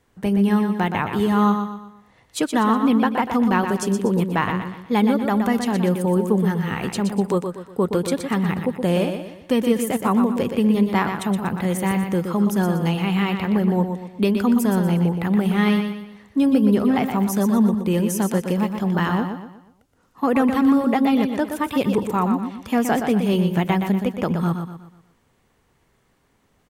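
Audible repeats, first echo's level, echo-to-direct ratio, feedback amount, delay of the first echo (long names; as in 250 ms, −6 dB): 4, −7.0 dB, −6.0 dB, 40%, 121 ms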